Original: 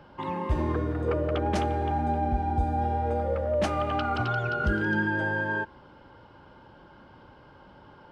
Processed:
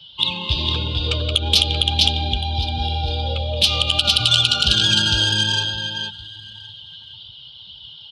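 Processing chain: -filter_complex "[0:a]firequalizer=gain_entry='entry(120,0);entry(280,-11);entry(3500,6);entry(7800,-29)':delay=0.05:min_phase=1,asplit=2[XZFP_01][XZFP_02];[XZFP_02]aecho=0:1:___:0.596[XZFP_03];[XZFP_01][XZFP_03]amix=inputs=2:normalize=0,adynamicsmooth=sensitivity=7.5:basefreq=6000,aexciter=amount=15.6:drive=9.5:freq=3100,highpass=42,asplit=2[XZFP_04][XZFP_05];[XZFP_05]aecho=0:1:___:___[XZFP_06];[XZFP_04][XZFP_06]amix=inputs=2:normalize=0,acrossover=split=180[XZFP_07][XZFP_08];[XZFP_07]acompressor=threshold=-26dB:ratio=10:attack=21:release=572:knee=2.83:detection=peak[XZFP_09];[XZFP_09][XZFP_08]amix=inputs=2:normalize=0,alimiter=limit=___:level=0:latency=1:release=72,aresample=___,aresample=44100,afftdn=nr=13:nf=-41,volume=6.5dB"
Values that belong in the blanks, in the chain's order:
456, 1066, 0.0944, -8dB, 32000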